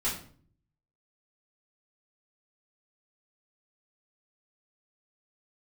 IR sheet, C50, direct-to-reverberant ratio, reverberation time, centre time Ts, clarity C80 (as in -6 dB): 6.5 dB, -9.0 dB, 0.50 s, 31 ms, 11.0 dB